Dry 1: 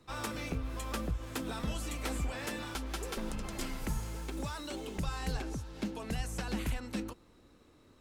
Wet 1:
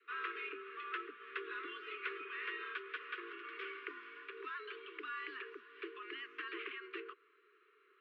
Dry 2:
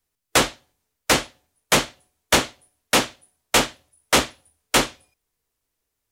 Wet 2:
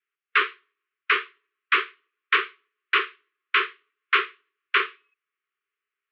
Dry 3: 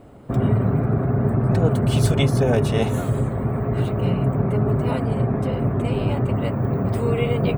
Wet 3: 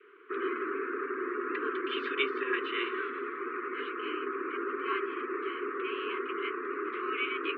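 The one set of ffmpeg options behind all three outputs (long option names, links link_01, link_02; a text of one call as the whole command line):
ffmpeg -i in.wav -af "highpass=frequency=320:width_type=q:width=0.5412,highpass=frequency=320:width_type=q:width=1.307,lowpass=frequency=2700:width_type=q:width=0.5176,lowpass=frequency=2700:width_type=q:width=0.7071,lowpass=frequency=2700:width_type=q:width=1.932,afreqshift=130,adynamicequalizer=threshold=0.00708:dfrequency=1100:dqfactor=6:tfrequency=1100:tqfactor=6:attack=5:release=100:ratio=0.375:range=1.5:mode=boostabove:tftype=bell,asuperstop=centerf=690:order=12:qfactor=0.99,volume=1.5dB" out.wav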